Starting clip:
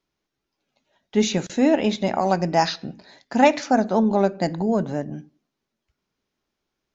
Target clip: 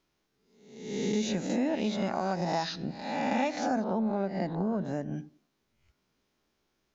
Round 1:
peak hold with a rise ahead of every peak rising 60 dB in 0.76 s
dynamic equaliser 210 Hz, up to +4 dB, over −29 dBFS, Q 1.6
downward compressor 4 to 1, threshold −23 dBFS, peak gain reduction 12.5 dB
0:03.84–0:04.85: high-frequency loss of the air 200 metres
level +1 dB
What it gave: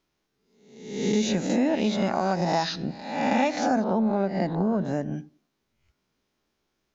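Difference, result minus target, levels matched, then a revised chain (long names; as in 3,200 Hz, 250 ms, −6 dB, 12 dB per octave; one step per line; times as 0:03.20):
downward compressor: peak gain reduction −5.5 dB
peak hold with a rise ahead of every peak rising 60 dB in 0.76 s
dynamic equaliser 210 Hz, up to +4 dB, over −29 dBFS, Q 1.6
downward compressor 4 to 1, threshold −30.5 dBFS, peak gain reduction 18.5 dB
0:03.84–0:04.85: high-frequency loss of the air 200 metres
level +1 dB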